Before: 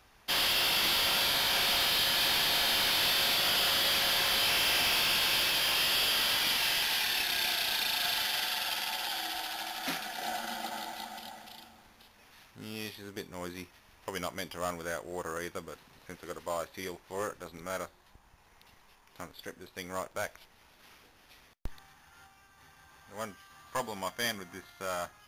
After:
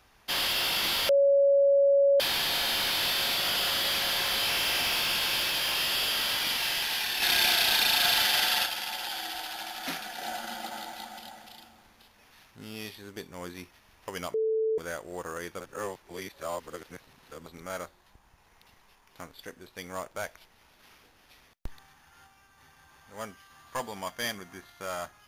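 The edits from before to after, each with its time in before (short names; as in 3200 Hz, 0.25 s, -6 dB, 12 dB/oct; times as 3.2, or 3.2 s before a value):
1.09–2.2 bleep 559 Hz -18 dBFS
7.22–8.66 gain +7 dB
14.34–14.78 bleep 441 Hz -24 dBFS
15.6–17.46 reverse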